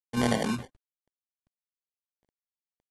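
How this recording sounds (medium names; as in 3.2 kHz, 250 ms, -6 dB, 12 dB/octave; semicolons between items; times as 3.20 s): aliases and images of a low sample rate 1.3 kHz, jitter 0%; tremolo saw up 1.3 Hz, depth 45%; a quantiser's noise floor 12-bit, dither none; AAC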